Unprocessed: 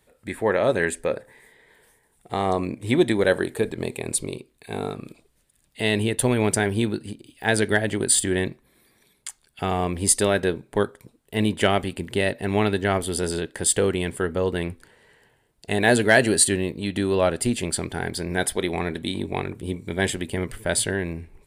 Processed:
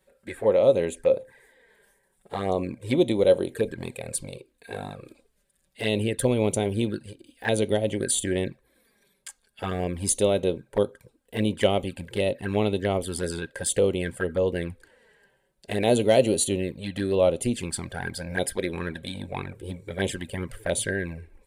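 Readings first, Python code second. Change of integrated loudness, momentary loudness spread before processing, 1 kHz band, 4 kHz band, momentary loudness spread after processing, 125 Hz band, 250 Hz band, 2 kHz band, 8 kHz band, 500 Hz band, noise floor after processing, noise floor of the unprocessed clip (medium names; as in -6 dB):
-2.5 dB, 12 LU, -6.0 dB, -4.5 dB, 15 LU, -3.0 dB, -3.0 dB, -8.5 dB, -6.5 dB, 0.0 dB, -70 dBFS, -65 dBFS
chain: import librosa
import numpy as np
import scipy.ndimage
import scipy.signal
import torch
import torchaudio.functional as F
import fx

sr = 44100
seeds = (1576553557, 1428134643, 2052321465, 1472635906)

y = fx.small_body(x, sr, hz=(530.0, 1600.0), ring_ms=55, db=11)
y = fx.env_flanger(y, sr, rest_ms=5.4, full_db=-17.0)
y = F.gain(torch.from_numpy(y), -2.5).numpy()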